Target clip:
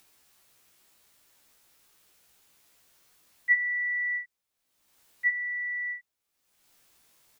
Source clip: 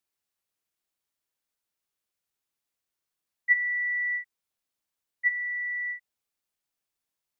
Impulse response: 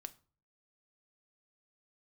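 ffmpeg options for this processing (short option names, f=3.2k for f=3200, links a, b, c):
-filter_complex "[0:a]acompressor=mode=upward:threshold=-48dB:ratio=2.5,asplit=2[a][b];[b]adelay=16,volume=-2.5dB[c];[a][c]amix=inputs=2:normalize=0"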